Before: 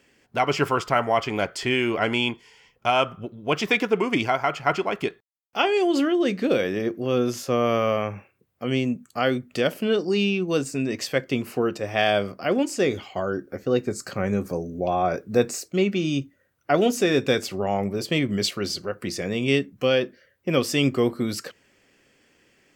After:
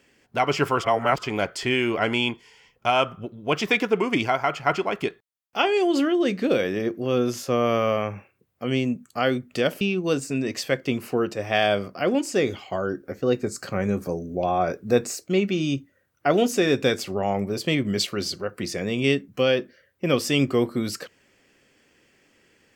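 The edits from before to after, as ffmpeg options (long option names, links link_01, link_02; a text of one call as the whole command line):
ffmpeg -i in.wav -filter_complex "[0:a]asplit=4[link_01][link_02][link_03][link_04];[link_01]atrim=end=0.832[link_05];[link_02]atrim=start=0.828:end=1.232,asetpts=PTS-STARTPTS,areverse[link_06];[link_03]atrim=start=1.228:end=9.812[link_07];[link_04]atrim=start=10.248[link_08];[link_05][link_06]acrossfade=duration=0.004:curve1=hsin:curve2=hsin[link_09];[link_09][link_07]acrossfade=duration=0.004:curve1=hsin:curve2=hsin[link_10];[link_10][link_08]acrossfade=duration=0.004:curve1=hsin:curve2=hsin" out.wav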